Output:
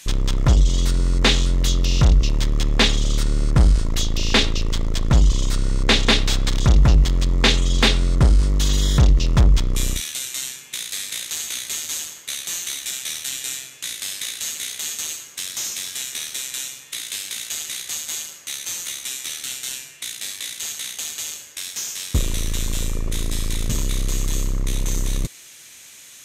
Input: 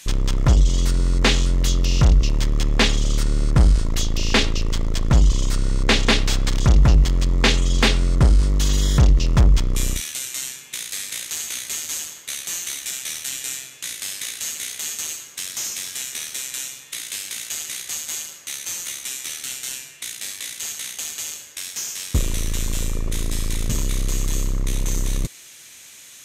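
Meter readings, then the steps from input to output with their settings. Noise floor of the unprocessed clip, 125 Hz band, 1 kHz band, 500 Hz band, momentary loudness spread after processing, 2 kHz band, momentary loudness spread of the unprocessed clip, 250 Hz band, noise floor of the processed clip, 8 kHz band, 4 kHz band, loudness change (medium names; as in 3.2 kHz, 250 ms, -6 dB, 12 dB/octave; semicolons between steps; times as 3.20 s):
-44 dBFS, 0.0 dB, 0.0 dB, 0.0 dB, 11 LU, 0.0 dB, 12 LU, 0.0 dB, -44 dBFS, 0.0 dB, +2.5 dB, +0.5 dB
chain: dynamic bell 3.7 kHz, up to +5 dB, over -43 dBFS, Q 4.7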